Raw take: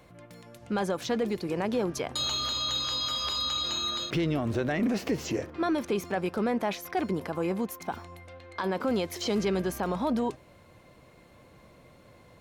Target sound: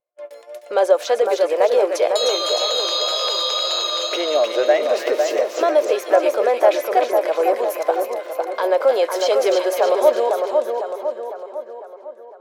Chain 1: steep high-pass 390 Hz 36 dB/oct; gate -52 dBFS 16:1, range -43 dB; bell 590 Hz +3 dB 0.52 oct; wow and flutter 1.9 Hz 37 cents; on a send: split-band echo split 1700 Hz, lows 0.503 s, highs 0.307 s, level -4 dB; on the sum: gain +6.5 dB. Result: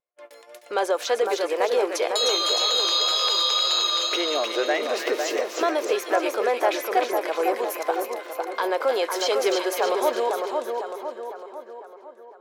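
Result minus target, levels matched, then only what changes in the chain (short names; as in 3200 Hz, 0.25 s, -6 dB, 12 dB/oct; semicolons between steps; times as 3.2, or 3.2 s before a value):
500 Hz band -3.0 dB
change: bell 590 Hz +14.5 dB 0.52 oct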